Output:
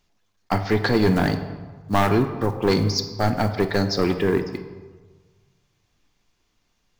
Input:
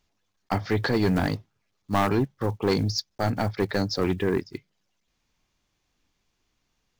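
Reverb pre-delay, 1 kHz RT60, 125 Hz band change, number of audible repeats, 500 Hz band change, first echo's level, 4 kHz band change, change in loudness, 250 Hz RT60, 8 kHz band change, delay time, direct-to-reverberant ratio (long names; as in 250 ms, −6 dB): 3 ms, 1.4 s, +3.5 dB, no echo audible, +4.5 dB, no echo audible, +4.0 dB, +4.0 dB, 1.5 s, +4.0 dB, no echo audible, 7.5 dB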